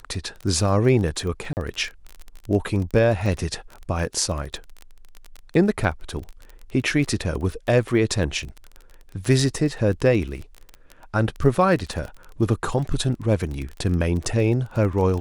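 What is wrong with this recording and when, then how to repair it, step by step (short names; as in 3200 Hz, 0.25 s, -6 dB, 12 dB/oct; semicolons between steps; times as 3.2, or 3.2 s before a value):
crackle 25/s -28 dBFS
1.53–1.57 gap 39 ms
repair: de-click; interpolate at 1.53, 39 ms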